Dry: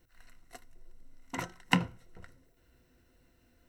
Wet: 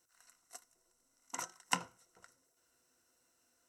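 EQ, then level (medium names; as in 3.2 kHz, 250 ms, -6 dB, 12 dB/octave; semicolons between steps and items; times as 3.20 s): distance through air 73 m; differentiator; high-order bell 2.8 kHz -11.5 dB; +13.5 dB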